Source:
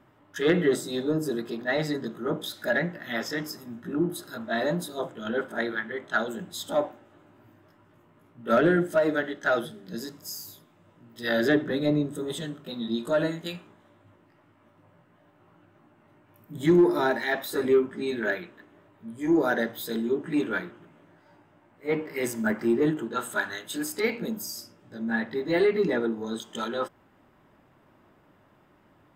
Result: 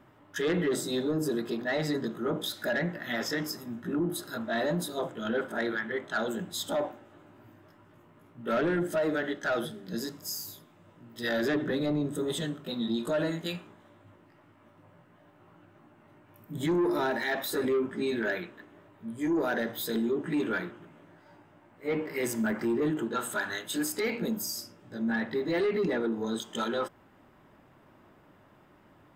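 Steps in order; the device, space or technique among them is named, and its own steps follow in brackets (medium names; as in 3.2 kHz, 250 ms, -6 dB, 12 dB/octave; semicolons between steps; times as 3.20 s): soft clipper into limiter (saturation -17.5 dBFS, distortion -16 dB; peak limiter -24 dBFS, peak gain reduction 6 dB); trim +1.5 dB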